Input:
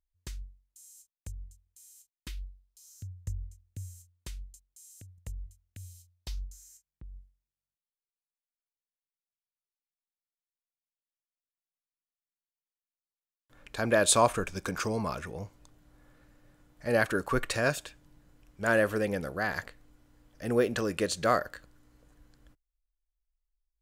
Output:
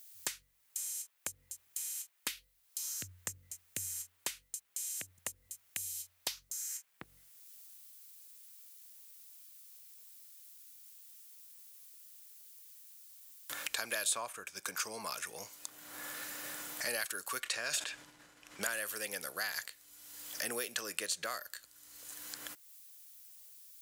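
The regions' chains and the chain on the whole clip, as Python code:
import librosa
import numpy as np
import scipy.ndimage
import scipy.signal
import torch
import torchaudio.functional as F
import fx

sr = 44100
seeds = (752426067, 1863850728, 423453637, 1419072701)

y = fx.chain(x, sr, fx.block_float(bits=7),
    fx.air_absorb(metres=57.0),
    fx.sustainer(db_per_s=49.0), at=(17.4, 18.63))
y = np.diff(y, prepend=0.0)
y = fx.band_squash(y, sr, depth_pct=100)
y = F.gain(torch.from_numpy(y), 7.5).numpy()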